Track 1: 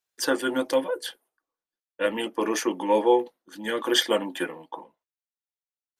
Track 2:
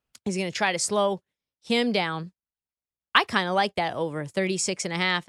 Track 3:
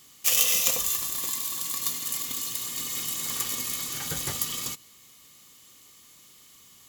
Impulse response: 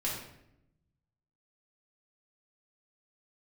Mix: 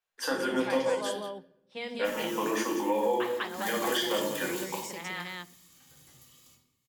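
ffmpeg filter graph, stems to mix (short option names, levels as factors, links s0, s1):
-filter_complex "[0:a]volume=0.891,asplit=4[s0][s1][s2][s3];[s1]volume=0.376[s4];[s2]volume=0.158[s5];[1:a]adelay=50,volume=0.335,asplit=3[s6][s7][s8];[s7]volume=0.2[s9];[s8]volume=0.447[s10];[2:a]asoftclip=type=tanh:threshold=0.0891,adelay=1800,volume=0.316,afade=t=in:st=3.42:d=0.35:silence=0.266073,afade=t=out:st=4.61:d=0.48:silence=0.237137,asplit=2[s11][s12];[s12]volume=0.376[s13];[s3]apad=whole_len=382899[s14];[s11][s14]sidechaingate=range=0.251:threshold=0.00631:ratio=16:detection=peak[s15];[s0][s6]amix=inputs=2:normalize=0,highpass=480,lowpass=3100,acompressor=threshold=0.00708:ratio=1.5,volume=1[s16];[3:a]atrim=start_sample=2205[s17];[s4][s9][s13]amix=inputs=3:normalize=0[s18];[s18][s17]afir=irnorm=-1:irlink=0[s19];[s5][s10]amix=inputs=2:normalize=0,aecho=0:1:199:1[s20];[s15][s16][s19][s20]amix=inputs=4:normalize=0,alimiter=limit=0.133:level=0:latency=1:release=310"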